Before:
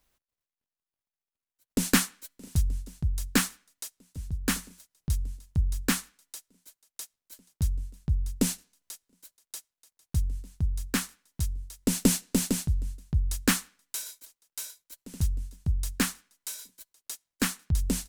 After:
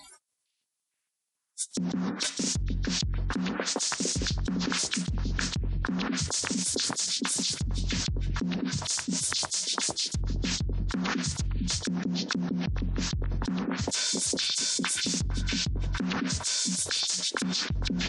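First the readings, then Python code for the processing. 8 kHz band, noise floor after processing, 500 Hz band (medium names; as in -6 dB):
+4.5 dB, -83 dBFS, +2.5 dB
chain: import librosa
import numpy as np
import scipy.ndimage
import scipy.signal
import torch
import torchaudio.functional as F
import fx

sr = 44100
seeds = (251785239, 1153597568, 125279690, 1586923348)

p1 = fx.freq_compress(x, sr, knee_hz=3000.0, ratio=1.5)
p2 = fx.env_lowpass_down(p1, sr, base_hz=430.0, full_db=-25.5)
p3 = scipy.signal.sosfilt(scipy.signal.butter(2, 130.0, 'highpass', fs=sr, output='sos'), p2)
p4 = fx.high_shelf(p3, sr, hz=4100.0, db=11.0)
p5 = fx.rider(p4, sr, range_db=4, speed_s=0.5)
p6 = p5 + fx.echo_stepped(p5, sr, ms=456, hz=3400.0, octaves=-0.7, feedback_pct=70, wet_db=-6, dry=0)
p7 = fx.noise_reduce_blind(p6, sr, reduce_db=27)
p8 = fx.env_flatten(p7, sr, amount_pct=100)
y = p8 * 10.0 ** (-6.5 / 20.0)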